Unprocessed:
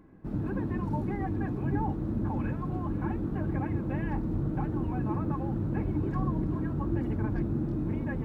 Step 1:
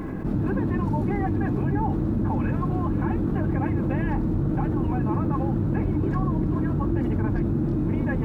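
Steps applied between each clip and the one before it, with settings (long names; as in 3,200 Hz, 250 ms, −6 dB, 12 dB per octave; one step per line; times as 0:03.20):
envelope flattener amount 70%
level +3.5 dB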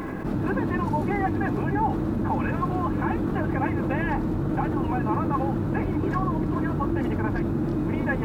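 low-shelf EQ 380 Hz −11 dB
level +6.5 dB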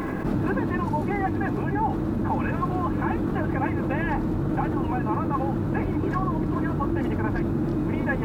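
speech leveller 0.5 s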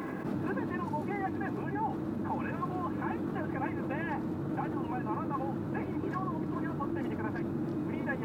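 high-pass filter 130 Hz 12 dB per octave
level −8 dB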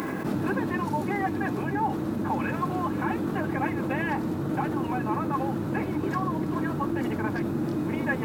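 high-shelf EQ 3,300 Hz +9.5 dB
level +6 dB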